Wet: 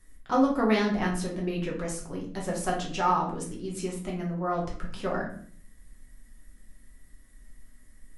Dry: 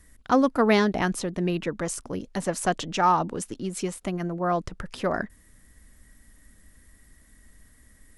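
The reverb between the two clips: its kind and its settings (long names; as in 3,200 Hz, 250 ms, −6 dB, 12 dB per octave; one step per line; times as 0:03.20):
rectangular room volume 60 cubic metres, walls mixed, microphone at 0.97 metres
level −8.5 dB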